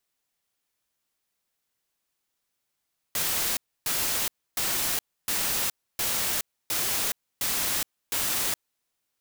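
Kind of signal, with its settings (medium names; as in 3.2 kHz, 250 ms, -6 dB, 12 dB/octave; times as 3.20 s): noise bursts white, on 0.42 s, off 0.29 s, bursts 8, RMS -27 dBFS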